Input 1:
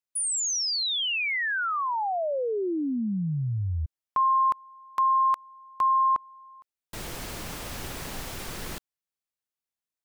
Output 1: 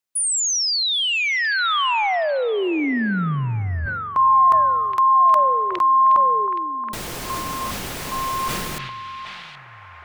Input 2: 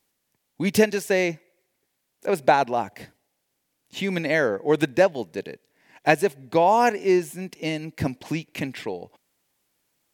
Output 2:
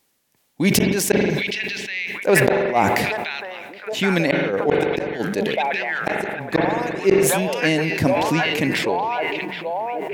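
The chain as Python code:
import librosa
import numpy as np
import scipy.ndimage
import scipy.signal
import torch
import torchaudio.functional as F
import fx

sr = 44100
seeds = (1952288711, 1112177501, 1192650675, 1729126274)

y = fx.low_shelf(x, sr, hz=83.0, db=-6.0)
y = fx.echo_stepped(y, sr, ms=772, hz=2800.0, octaves=-0.7, feedback_pct=70, wet_db=-4.0)
y = fx.gate_flip(y, sr, shuts_db=-11.0, range_db=-37)
y = fx.rev_spring(y, sr, rt60_s=3.4, pass_ms=(43,), chirp_ms=50, drr_db=17.5)
y = fx.sustainer(y, sr, db_per_s=25.0)
y = F.gain(torch.from_numpy(y), 6.5).numpy()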